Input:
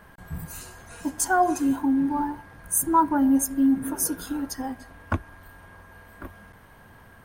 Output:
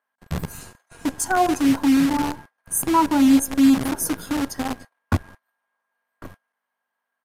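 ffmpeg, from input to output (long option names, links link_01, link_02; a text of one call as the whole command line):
ffmpeg -i in.wav -filter_complex "[0:a]agate=range=-27dB:threshold=-42dB:ratio=16:detection=peak,equalizer=frequency=140:width=0.6:gain=9,aeval=exprs='val(0)+0.00126*(sin(2*PI*50*n/s)+sin(2*PI*2*50*n/s)/2+sin(2*PI*3*50*n/s)/3+sin(2*PI*4*50*n/s)/4+sin(2*PI*5*50*n/s)/5)':channel_layout=same,acrossover=split=560[link_01][link_02];[link_01]acrusher=bits=5:dc=4:mix=0:aa=0.000001[link_03];[link_03][link_02]amix=inputs=2:normalize=0,aresample=32000,aresample=44100" out.wav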